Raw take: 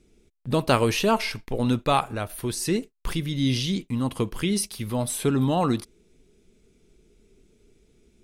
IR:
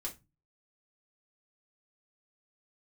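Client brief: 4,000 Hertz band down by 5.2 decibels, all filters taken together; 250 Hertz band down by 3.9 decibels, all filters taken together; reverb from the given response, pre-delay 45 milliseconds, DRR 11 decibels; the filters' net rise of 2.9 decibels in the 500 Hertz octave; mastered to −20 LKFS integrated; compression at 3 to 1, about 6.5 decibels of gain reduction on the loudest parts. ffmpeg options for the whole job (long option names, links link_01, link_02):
-filter_complex "[0:a]equalizer=frequency=250:width_type=o:gain=-6.5,equalizer=frequency=500:width_type=o:gain=5.5,equalizer=frequency=4000:width_type=o:gain=-7,acompressor=threshold=-23dB:ratio=3,asplit=2[link_01][link_02];[1:a]atrim=start_sample=2205,adelay=45[link_03];[link_02][link_03]afir=irnorm=-1:irlink=0,volume=-10dB[link_04];[link_01][link_04]amix=inputs=2:normalize=0,volume=8.5dB"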